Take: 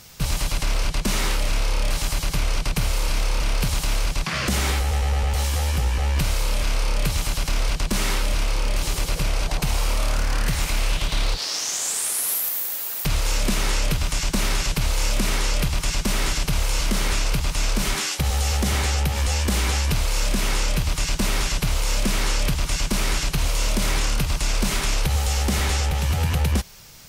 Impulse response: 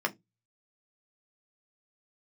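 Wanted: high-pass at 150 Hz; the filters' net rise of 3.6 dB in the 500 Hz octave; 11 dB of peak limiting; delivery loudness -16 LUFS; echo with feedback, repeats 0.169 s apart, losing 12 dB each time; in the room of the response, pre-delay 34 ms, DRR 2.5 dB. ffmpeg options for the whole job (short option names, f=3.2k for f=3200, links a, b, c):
-filter_complex "[0:a]highpass=150,equalizer=f=500:t=o:g=4.5,alimiter=limit=-20.5dB:level=0:latency=1,aecho=1:1:169|338|507:0.251|0.0628|0.0157,asplit=2[a][b];[1:a]atrim=start_sample=2205,adelay=34[c];[b][c]afir=irnorm=-1:irlink=0,volume=-10.5dB[d];[a][d]amix=inputs=2:normalize=0,volume=11.5dB"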